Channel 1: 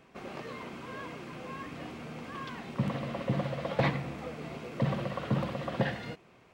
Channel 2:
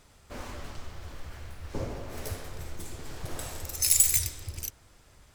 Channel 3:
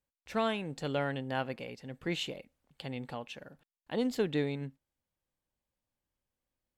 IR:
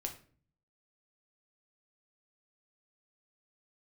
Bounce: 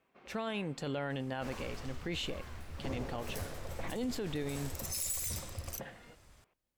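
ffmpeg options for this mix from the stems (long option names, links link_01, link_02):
-filter_complex "[0:a]lowpass=3900,lowshelf=frequency=180:gain=-10.5,volume=-14dB[link_01];[1:a]asoftclip=type=tanh:threshold=-13.5dB,adelay=1100,volume=-4dB[link_02];[2:a]volume=1dB[link_03];[link_01][link_02][link_03]amix=inputs=3:normalize=0,alimiter=level_in=4.5dB:limit=-24dB:level=0:latency=1:release=13,volume=-4.5dB"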